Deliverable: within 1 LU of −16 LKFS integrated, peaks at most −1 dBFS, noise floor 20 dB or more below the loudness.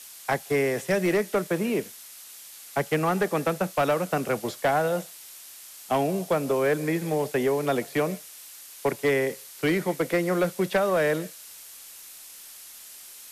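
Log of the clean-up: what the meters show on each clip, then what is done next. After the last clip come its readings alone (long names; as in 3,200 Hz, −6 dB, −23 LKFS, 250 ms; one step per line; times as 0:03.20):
share of clipped samples 1.0%; peaks flattened at −17.0 dBFS; background noise floor −45 dBFS; target noise floor −46 dBFS; integrated loudness −26.0 LKFS; sample peak −17.0 dBFS; target loudness −16.0 LKFS
→ clipped peaks rebuilt −17 dBFS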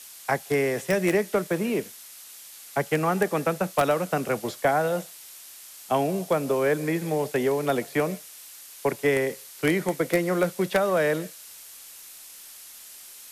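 share of clipped samples 0.0%; background noise floor −45 dBFS; target noise floor −46 dBFS
→ noise reduction from a noise print 6 dB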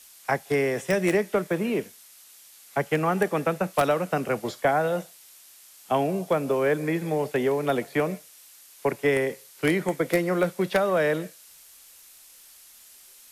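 background noise floor −51 dBFS; integrated loudness −25.5 LKFS; sample peak −8.0 dBFS; target loudness −16.0 LKFS
→ level +9.5 dB
brickwall limiter −1 dBFS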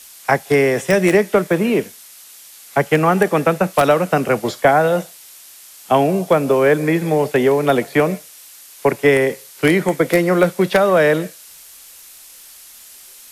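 integrated loudness −16.5 LKFS; sample peak −1.0 dBFS; background noise floor −42 dBFS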